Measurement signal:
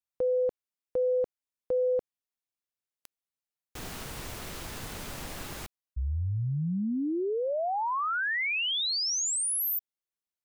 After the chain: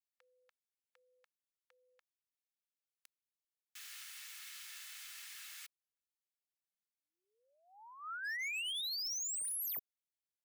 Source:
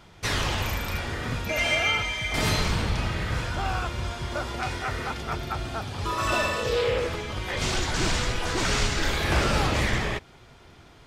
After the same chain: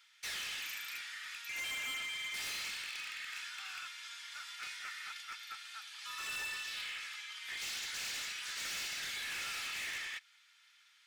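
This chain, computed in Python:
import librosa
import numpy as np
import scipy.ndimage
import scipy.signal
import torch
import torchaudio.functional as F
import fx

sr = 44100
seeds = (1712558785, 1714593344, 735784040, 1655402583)

y = fx.rattle_buzz(x, sr, strikes_db=-24.0, level_db=-17.0)
y = scipy.signal.sosfilt(scipy.signal.cheby2(4, 80, 280.0, 'highpass', fs=sr, output='sos'), y)
y = y + 0.33 * np.pad(y, (int(2.3 * sr / 1000.0), 0))[:len(y)]
y = np.clip(y, -10.0 ** (-31.0 / 20.0), 10.0 ** (-31.0 / 20.0))
y = y * librosa.db_to_amplitude(-7.0)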